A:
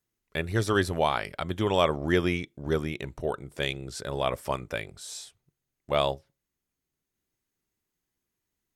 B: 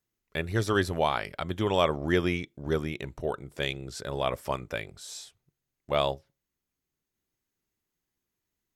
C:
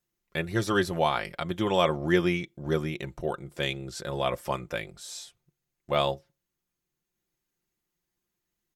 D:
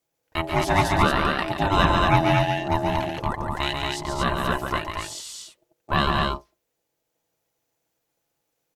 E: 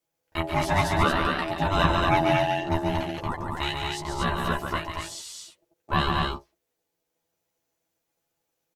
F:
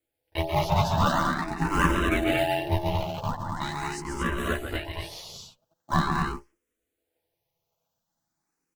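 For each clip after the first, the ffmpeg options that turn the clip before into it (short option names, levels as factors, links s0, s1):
-af "equalizer=f=9100:t=o:w=0.22:g=-5.5,volume=0.891"
-af "aecho=1:1:5.7:0.53"
-af "aeval=exprs='val(0)*sin(2*PI*490*n/s)':c=same,aecho=1:1:139.9|230.3:0.562|0.708,volume=2.11"
-filter_complex "[0:a]asplit=2[s0][s1];[s1]adelay=12,volume=0.708[s2];[s0][s2]amix=inputs=2:normalize=0,volume=0.596"
-filter_complex "[0:a]asplit=2[s0][s1];[s1]acrusher=samples=40:mix=1:aa=0.000001:lfo=1:lforange=64:lforate=1.5,volume=0.447[s2];[s0][s2]amix=inputs=2:normalize=0,asplit=2[s3][s4];[s4]afreqshift=0.43[s5];[s3][s5]amix=inputs=2:normalize=1"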